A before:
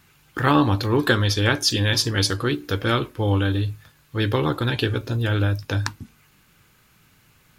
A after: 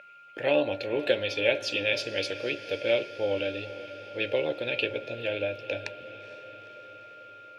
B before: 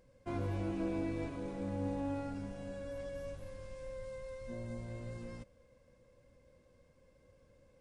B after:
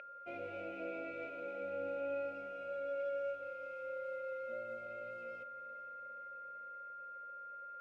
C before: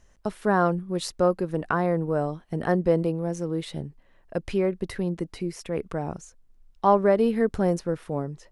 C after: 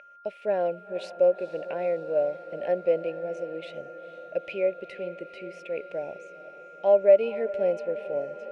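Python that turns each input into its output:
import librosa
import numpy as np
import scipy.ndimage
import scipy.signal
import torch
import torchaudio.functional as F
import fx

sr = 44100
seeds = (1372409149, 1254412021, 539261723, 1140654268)

y = x + 10.0 ** (-28.0 / 20.0) * np.sin(2.0 * np.pi * 1400.0 * np.arange(len(x)) / sr)
y = fx.double_bandpass(y, sr, hz=1200.0, octaves=2.1)
y = fx.echo_diffused(y, sr, ms=464, feedback_pct=67, wet_db=-15.0)
y = y * 10.0 ** (6.5 / 20.0)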